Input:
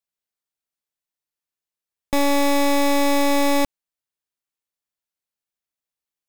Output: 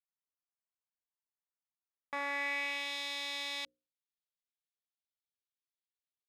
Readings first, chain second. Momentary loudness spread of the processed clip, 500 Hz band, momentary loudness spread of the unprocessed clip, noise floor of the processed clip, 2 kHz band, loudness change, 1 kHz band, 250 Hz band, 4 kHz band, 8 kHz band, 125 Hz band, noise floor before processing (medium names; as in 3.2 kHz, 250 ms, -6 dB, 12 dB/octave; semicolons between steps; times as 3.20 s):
8 LU, -26.5 dB, 5 LU, under -85 dBFS, -8.5 dB, -16.0 dB, -20.0 dB, -33.0 dB, -9.5 dB, -21.0 dB, under -40 dB, under -85 dBFS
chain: peaking EQ 2 kHz +4 dB 0.57 oct; hum notches 60/120/180/240/300/360/420/480/540 Hz; band-pass sweep 990 Hz -> 3.6 kHz, 1.85–2.97 s; trim -6.5 dB